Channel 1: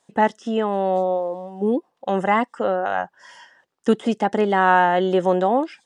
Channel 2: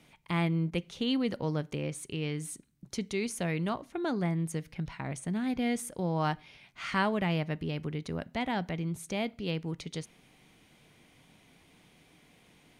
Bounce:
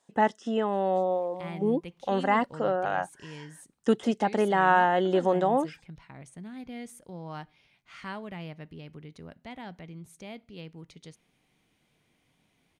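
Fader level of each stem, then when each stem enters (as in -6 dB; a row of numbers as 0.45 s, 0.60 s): -5.5 dB, -10.0 dB; 0.00 s, 1.10 s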